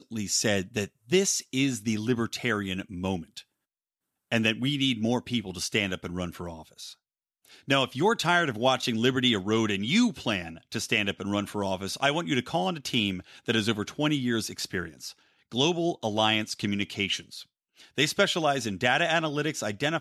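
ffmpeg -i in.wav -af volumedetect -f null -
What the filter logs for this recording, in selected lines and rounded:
mean_volume: -28.3 dB
max_volume: -9.0 dB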